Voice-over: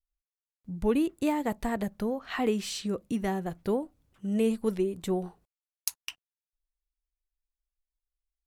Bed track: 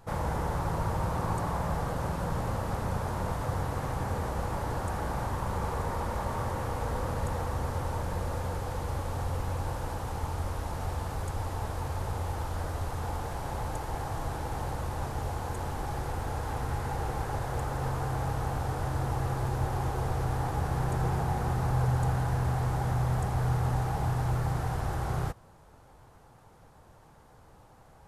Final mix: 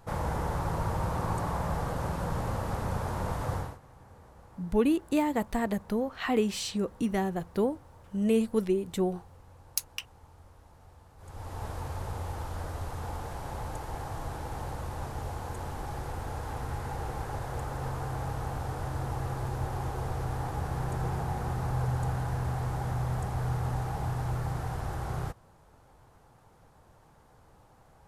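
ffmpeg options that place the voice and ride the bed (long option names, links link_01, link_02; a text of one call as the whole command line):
ffmpeg -i stem1.wav -i stem2.wav -filter_complex "[0:a]adelay=3900,volume=1dB[link_01];[1:a]volume=18dB,afade=type=out:start_time=3.54:duration=0.24:silence=0.0891251,afade=type=in:start_time=11.17:duration=0.49:silence=0.11885[link_02];[link_01][link_02]amix=inputs=2:normalize=0" out.wav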